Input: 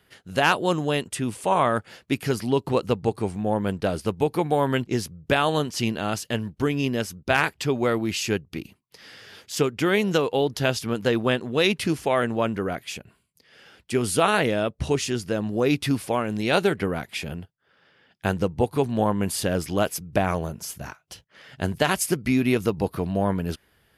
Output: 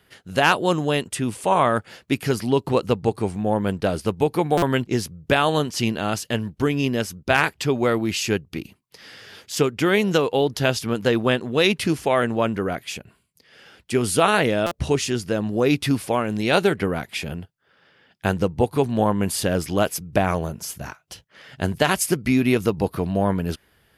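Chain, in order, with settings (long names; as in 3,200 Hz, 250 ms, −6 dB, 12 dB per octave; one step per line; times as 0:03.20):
buffer that repeats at 0:04.57/0:14.66, samples 256, times 8
level +2.5 dB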